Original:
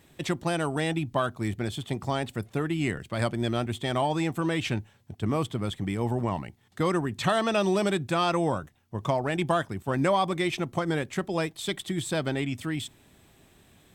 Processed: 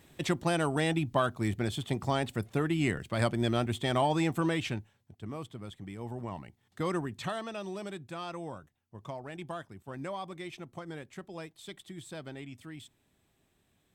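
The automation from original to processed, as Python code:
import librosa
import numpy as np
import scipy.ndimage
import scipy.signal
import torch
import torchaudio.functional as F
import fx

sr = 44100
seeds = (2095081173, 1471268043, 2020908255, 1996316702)

y = fx.gain(x, sr, db=fx.line((4.43, -1.0), (5.16, -13.0), (5.91, -13.0), (6.99, -5.5), (7.54, -14.5)))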